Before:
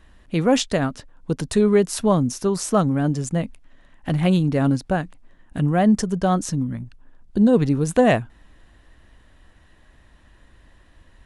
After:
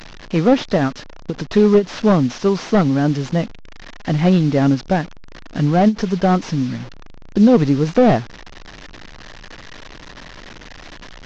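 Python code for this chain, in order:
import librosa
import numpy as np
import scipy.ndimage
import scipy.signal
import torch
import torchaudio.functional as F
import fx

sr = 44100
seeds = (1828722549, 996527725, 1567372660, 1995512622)

y = fx.delta_mod(x, sr, bps=32000, step_db=-34.5)
y = fx.peak_eq(y, sr, hz=64.0, db=-11.0, octaves=1.3)
y = fx.end_taper(y, sr, db_per_s=310.0)
y = F.gain(torch.from_numpy(y), 5.5).numpy()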